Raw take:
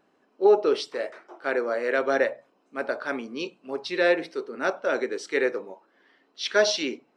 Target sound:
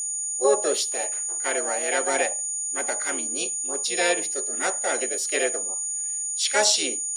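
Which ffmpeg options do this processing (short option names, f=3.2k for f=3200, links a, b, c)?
-filter_complex "[0:a]aeval=exprs='val(0)+0.0158*sin(2*PI*6800*n/s)':c=same,crystalizer=i=4:c=0,asplit=2[a][b];[b]asetrate=58866,aresample=44100,atempo=0.749154,volume=-2dB[c];[a][c]amix=inputs=2:normalize=0,volume=-5dB"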